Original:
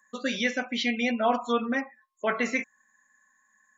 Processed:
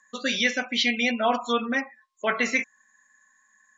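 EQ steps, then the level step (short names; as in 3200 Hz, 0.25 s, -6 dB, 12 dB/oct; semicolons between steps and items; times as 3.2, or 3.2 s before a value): LPF 6200 Hz 12 dB/oct; high shelf 2300 Hz +10.5 dB; 0.0 dB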